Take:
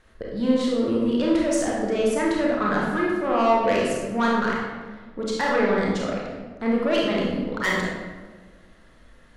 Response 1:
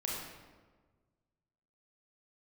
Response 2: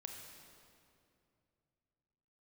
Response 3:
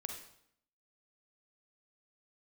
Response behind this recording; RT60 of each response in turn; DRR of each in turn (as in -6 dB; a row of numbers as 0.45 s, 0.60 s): 1; 1.4 s, 2.6 s, 0.70 s; -4.0 dB, 2.0 dB, 3.0 dB